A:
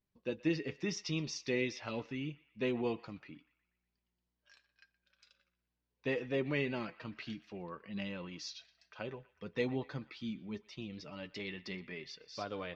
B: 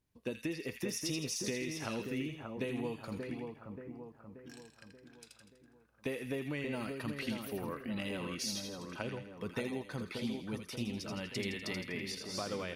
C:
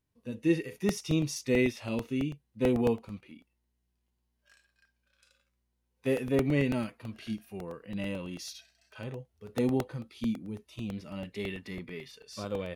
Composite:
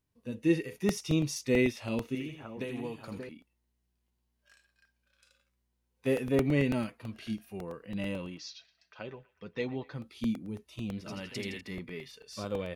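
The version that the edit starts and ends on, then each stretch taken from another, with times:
C
2.15–3.29 s: from B
8.32–9.98 s: from A, crossfade 0.16 s
11.06–11.61 s: from B

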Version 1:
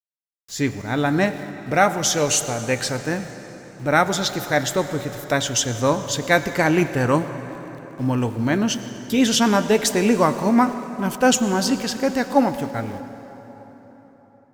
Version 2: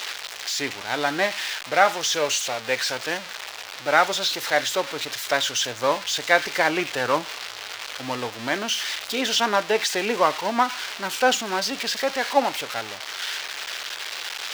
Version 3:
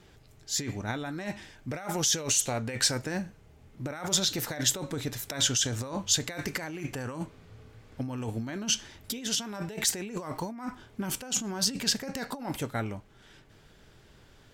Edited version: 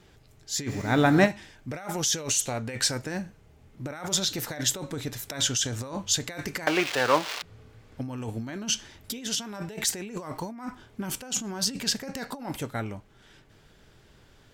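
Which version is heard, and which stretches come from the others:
3
0.69–1.27 s: from 1, crossfade 0.06 s
6.67–7.42 s: from 2

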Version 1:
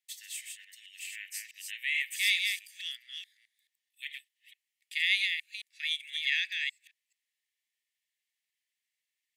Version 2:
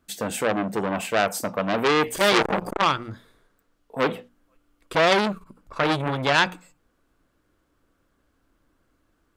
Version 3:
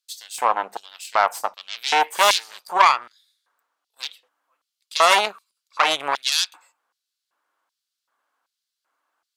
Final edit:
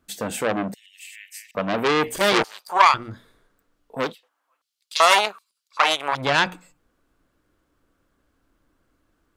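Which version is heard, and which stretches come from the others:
2
0.74–1.55 s: from 1
2.44–2.94 s: from 3
4.07–6.18 s: from 3, crossfade 0.16 s

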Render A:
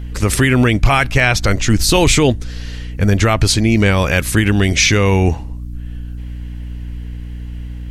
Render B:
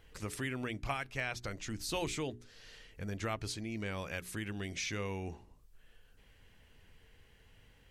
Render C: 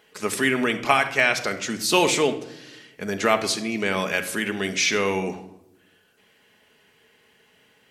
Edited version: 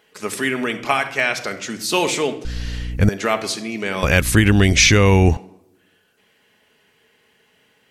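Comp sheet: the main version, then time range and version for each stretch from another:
C
2.45–3.09 s: from A
4.03–5.37 s: from A
not used: B

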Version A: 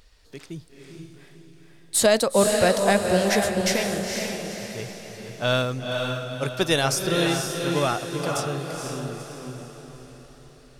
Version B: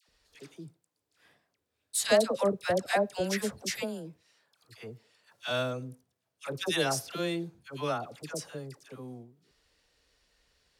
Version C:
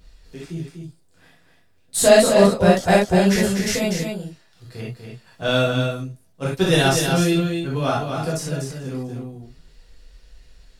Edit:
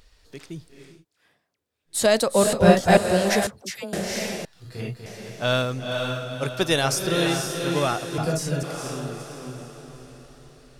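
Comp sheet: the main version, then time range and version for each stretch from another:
A
0.93–1.97 s: from B, crossfade 0.24 s
2.53–2.97 s: from C
3.47–3.93 s: from B
4.45–5.06 s: from C
8.18–8.63 s: from C

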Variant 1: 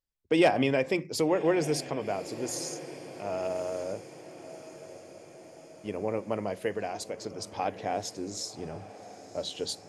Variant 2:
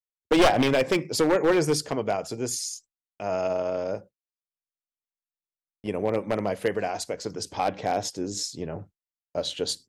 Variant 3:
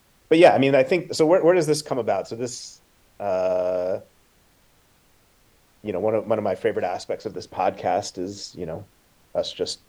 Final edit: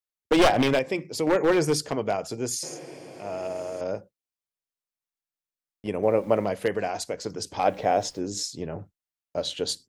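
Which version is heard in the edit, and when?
2
0.79–1.27 s: from 1
2.63–3.81 s: from 1
6.03–6.45 s: from 3
7.64–8.19 s: from 3

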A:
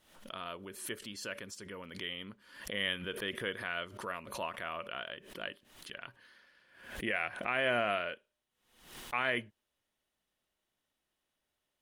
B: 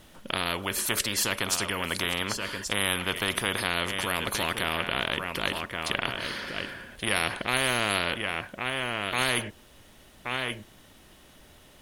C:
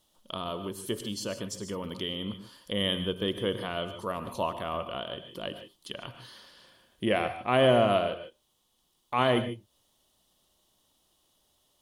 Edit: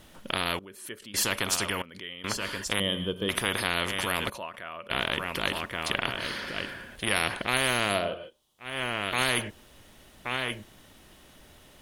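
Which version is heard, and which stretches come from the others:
B
0.59–1.14 s: from A
1.82–2.24 s: from A
2.80–3.29 s: from C
4.30–4.90 s: from A
7.97–8.70 s: from C, crossfade 0.24 s

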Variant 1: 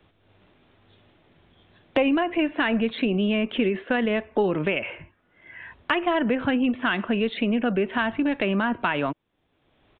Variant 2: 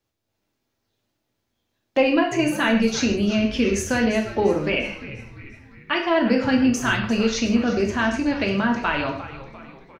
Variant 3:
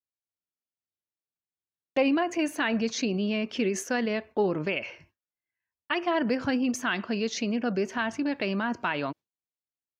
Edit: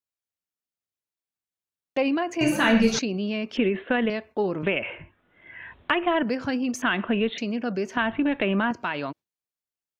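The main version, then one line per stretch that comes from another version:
3
2.41–2.99 s: from 2
3.57–4.10 s: from 1
4.63–6.23 s: from 1
6.82–7.38 s: from 1
7.97–8.71 s: from 1

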